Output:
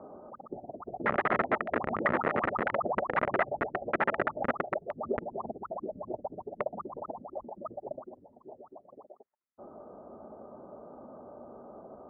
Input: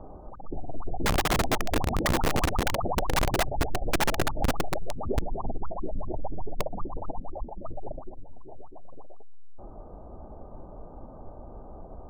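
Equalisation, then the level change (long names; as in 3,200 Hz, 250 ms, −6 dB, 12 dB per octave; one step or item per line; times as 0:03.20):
dynamic equaliser 270 Hz, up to −4 dB, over −46 dBFS, Q 1.9
high-frequency loss of the air 140 metres
loudspeaker in its box 200–2,200 Hz, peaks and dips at 230 Hz +6 dB, 400 Hz +4 dB, 590 Hz +6 dB, 1,300 Hz +8 dB, 1,900 Hz +8 dB
−3.5 dB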